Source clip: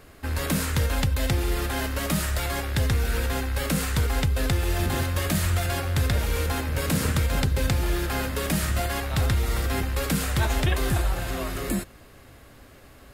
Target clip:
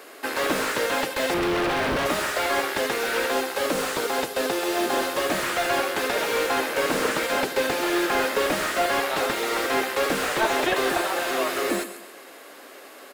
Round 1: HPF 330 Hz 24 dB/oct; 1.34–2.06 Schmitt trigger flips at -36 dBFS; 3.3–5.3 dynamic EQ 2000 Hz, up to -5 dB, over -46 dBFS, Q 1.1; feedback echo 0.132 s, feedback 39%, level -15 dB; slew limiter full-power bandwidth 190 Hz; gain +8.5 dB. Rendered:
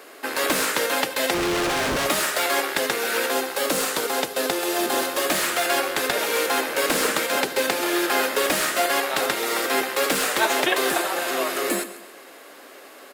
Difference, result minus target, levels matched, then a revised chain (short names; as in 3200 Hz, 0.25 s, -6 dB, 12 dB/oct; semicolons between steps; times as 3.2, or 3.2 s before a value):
slew limiter: distortion -8 dB
HPF 330 Hz 24 dB/oct; 1.34–2.06 Schmitt trigger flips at -36 dBFS; 3.3–5.3 dynamic EQ 2000 Hz, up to -5 dB, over -46 dBFS, Q 1.1; feedback echo 0.132 s, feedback 39%, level -15 dB; slew limiter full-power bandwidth 60.5 Hz; gain +8.5 dB